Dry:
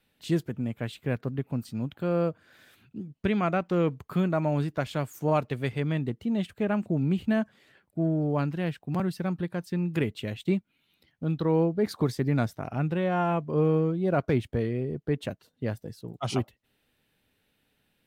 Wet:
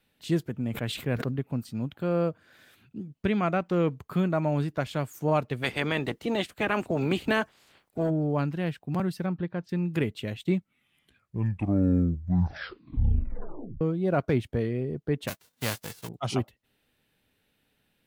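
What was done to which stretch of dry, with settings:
0.64–1.4 sustainer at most 64 dB/s
5.62–8.09 spectral limiter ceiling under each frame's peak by 20 dB
9.26–9.69 air absorption 200 m
10.43 tape stop 3.38 s
15.27–16.07 spectral whitening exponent 0.3

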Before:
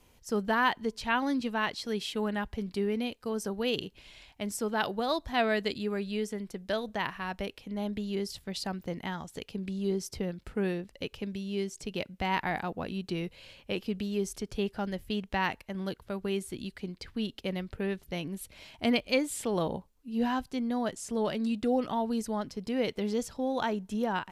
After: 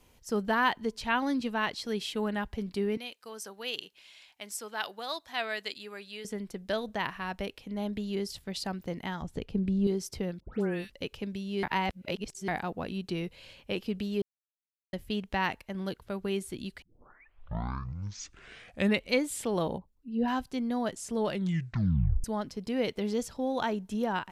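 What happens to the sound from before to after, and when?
2.97–6.25 HPF 1500 Hz 6 dB/oct
9.22–9.87 tilt -3 dB/oct
10.4–10.9 dispersion highs, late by 0.146 s, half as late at 1800 Hz
11.63–12.48 reverse
14.22–14.93 mute
16.82 tape start 2.40 s
19.78–20.28 formant sharpening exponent 1.5
21.28 tape stop 0.96 s

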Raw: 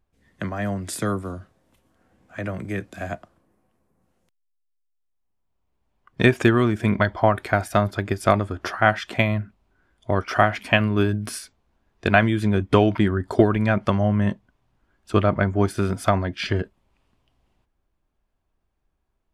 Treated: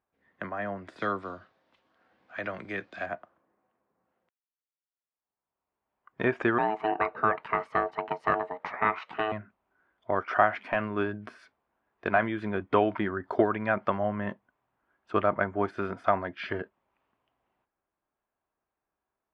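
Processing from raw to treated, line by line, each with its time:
0.96–3.06 bell 4400 Hz +15 dB 1.5 oct
6.58–9.32 ring modulator 540 Hz
whole clip: HPF 970 Hz 6 dB/oct; de-esser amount 75%; LPF 1600 Hz 12 dB/oct; gain +1.5 dB

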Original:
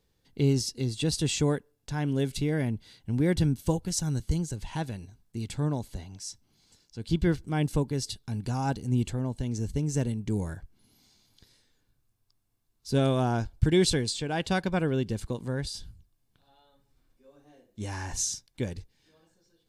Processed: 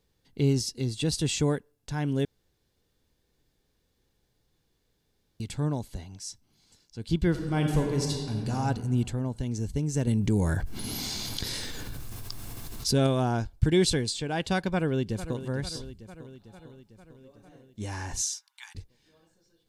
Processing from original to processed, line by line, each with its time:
2.25–5.4 room tone
7.3–8.54 reverb throw, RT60 1.9 s, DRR 0.5 dB
10.07–13.07 fast leveller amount 70%
14.72–15.44 echo throw 0.45 s, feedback 65%, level -12.5 dB
18.22–18.75 steep high-pass 820 Hz 96 dB/oct

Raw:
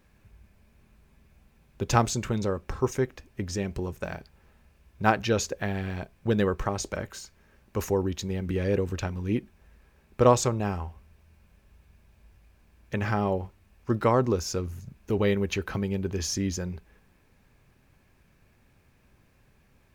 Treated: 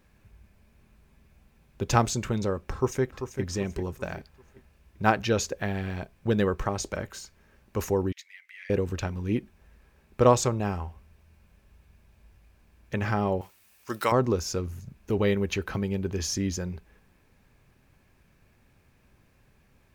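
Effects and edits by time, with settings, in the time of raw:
2.73–3.42 echo throw 0.39 s, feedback 40%, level -9 dB
8.12–8.7 ladder high-pass 1900 Hz, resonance 75%
13.41–14.12 tilt +4.5 dB/oct

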